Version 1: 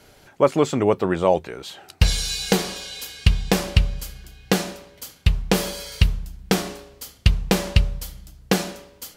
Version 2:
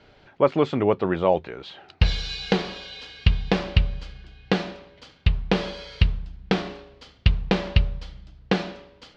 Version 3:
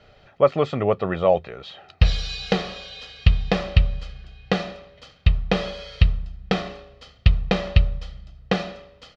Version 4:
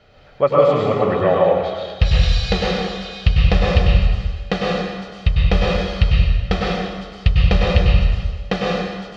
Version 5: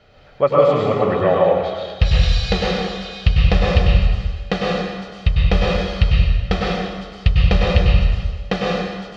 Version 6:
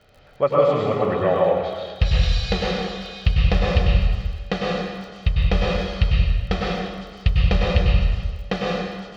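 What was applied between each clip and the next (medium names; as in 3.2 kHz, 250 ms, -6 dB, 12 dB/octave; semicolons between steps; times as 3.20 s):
low-pass 4.1 kHz 24 dB/octave; trim -2 dB
comb 1.6 ms, depth 52%
plate-style reverb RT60 1.5 s, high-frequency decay 0.85×, pre-delay 90 ms, DRR -4.5 dB
no audible change
crackle 37 per s -37 dBFS; trim -3.5 dB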